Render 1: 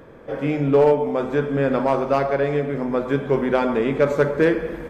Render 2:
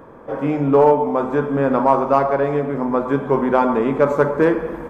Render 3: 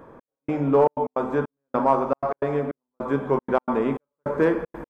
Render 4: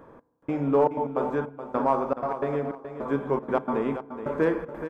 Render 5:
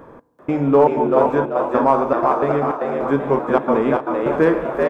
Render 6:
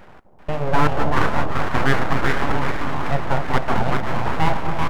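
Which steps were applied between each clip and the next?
graphic EQ 250/1000/2000/4000 Hz +4/+11/-3/-5 dB; trim -1 dB
trance gate "xx...xxxx.x.x" 155 bpm -60 dB; trim -4.5 dB
feedback delay 424 ms, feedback 21%, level -10.5 dB; FDN reverb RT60 1.2 s, low-frequency decay 1.35×, high-frequency decay 0.35×, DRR 20 dB; trim -3.5 dB
frequency-shifting echo 388 ms, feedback 36%, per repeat +89 Hz, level -4 dB; trim +8 dB
full-wave rectifier; echo whose repeats swap between lows and highs 249 ms, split 880 Hz, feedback 56%, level -6 dB; trim -1 dB

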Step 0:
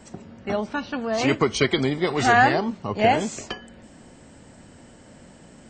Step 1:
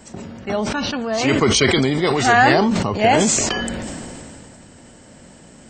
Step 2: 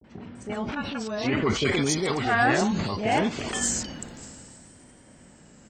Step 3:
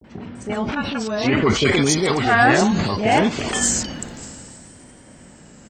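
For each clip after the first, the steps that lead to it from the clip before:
treble shelf 5.3 kHz +6.5 dB; decay stretcher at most 21 dB/s; trim +2.5 dB
Chebyshev shaper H 2 -23 dB, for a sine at -1 dBFS; three bands offset in time lows, mids, highs 30/350 ms, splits 600/3800 Hz; vibrato 0.66 Hz 83 cents; trim -7 dB
speakerphone echo 380 ms, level -24 dB; trim +7 dB

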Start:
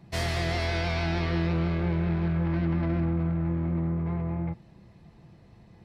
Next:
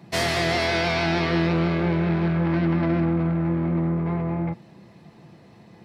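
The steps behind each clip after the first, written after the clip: high-pass 170 Hz 12 dB/octave; trim +8 dB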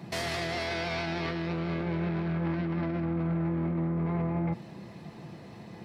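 compressor with a negative ratio -25 dBFS, ratio -0.5; peak limiter -23 dBFS, peak gain reduction 10 dB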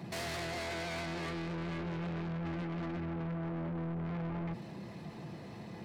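saturation -35.5 dBFS, distortion -8 dB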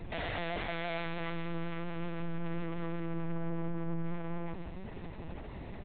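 delay 151 ms -8.5 dB; LPC vocoder at 8 kHz pitch kept; trim +2.5 dB

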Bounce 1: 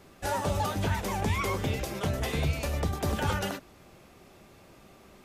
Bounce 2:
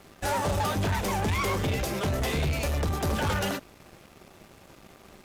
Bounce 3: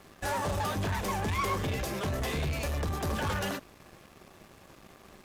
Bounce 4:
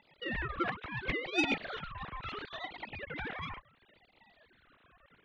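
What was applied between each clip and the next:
waveshaping leveller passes 3; trim -5 dB
in parallel at -3 dB: peak limiter -29 dBFS, peak gain reduction 7.5 dB; on the sum: small resonant body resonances 1.1/1.7 kHz, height 7 dB; trim -7 dB
formants replaced by sine waves; valve stage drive 20 dB, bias 0.55; ring modulator with a swept carrier 960 Hz, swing 50%, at 0.72 Hz

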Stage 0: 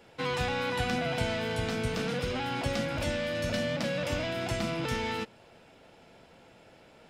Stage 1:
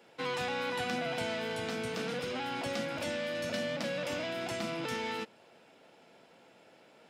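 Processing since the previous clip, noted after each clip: high-pass 200 Hz 12 dB/octave; trim -3 dB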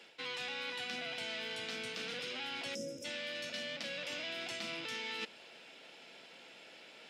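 frequency weighting D; time-frequency box 2.75–3.05 s, 590–5000 Hz -26 dB; reverse; compression 6:1, threshold -39 dBFS, peak gain reduction 13.5 dB; reverse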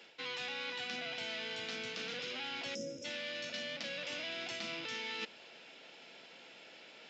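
resampled via 16 kHz

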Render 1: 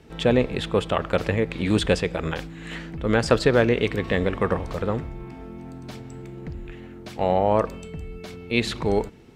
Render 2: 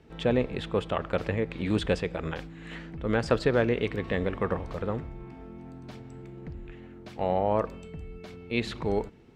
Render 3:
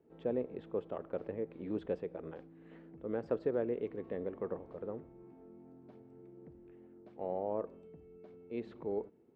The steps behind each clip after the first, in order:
treble shelf 5.4 kHz -9.5 dB; trim -5.5 dB
band-pass filter 400 Hz, Q 1.2; trim -7.5 dB

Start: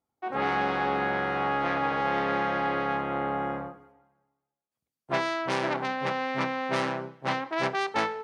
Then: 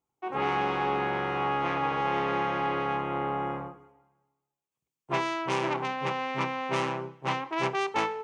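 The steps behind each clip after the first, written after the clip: rippled EQ curve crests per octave 0.71, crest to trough 7 dB; trim -1.5 dB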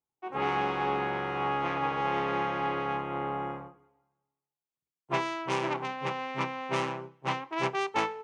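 upward expansion 1.5:1, over -43 dBFS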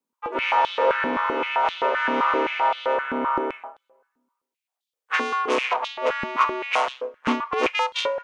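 frequency shift +110 Hz; step-sequenced high-pass 7.7 Hz 230–3500 Hz; trim +4.5 dB

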